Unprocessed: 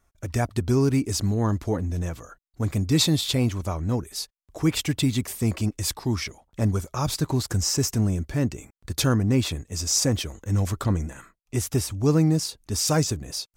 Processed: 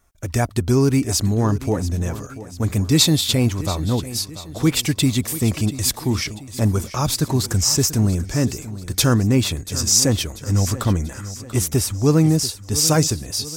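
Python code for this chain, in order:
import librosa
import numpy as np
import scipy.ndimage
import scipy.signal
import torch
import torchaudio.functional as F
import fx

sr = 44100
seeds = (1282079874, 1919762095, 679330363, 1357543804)

p1 = fx.high_shelf(x, sr, hz=5700.0, db=5.0)
p2 = p1 + fx.echo_feedback(p1, sr, ms=688, feedback_pct=47, wet_db=-15.0, dry=0)
y = F.gain(torch.from_numpy(p2), 4.5).numpy()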